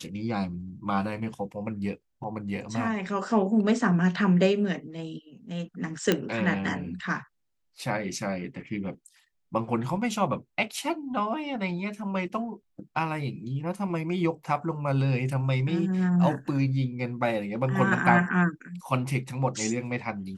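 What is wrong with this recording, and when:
0:06.12: click −8 dBFS

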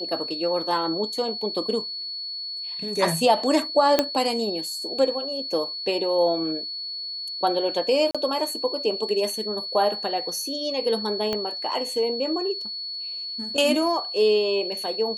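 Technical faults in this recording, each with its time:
whistle 4,400 Hz −30 dBFS
0:03.99: click −4 dBFS
0:08.11–0:08.15: drop-out 36 ms
0:11.33: click −13 dBFS

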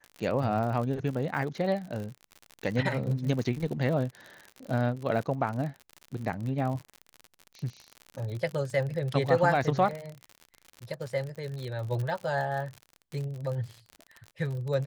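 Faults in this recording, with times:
surface crackle 60 per second −34 dBFS

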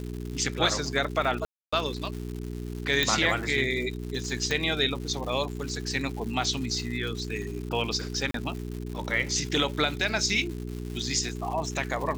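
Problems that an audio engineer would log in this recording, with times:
surface crackle 260 per second −35 dBFS
mains hum 60 Hz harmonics 7 −35 dBFS
0:01.45–0:01.73: drop-out 275 ms
0:03.03: click −9 dBFS
0:04.51: click
0:08.31–0:08.34: drop-out 33 ms

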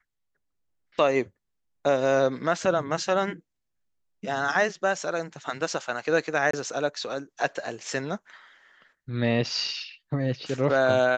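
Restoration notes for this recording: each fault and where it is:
0:06.51–0:06.53: drop-out 24 ms

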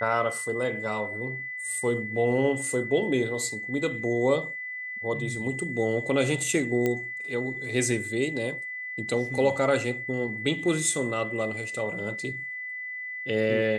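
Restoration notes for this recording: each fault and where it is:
whistle 2,000 Hz −33 dBFS
0:06.86: click −14 dBFS

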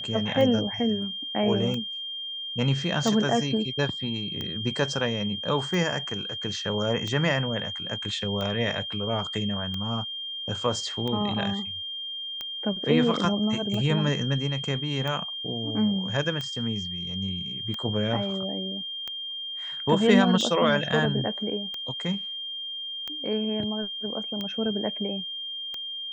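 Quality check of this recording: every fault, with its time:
scratch tick 45 rpm −19 dBFS
whistle 3,200 Hz −32 dBFS

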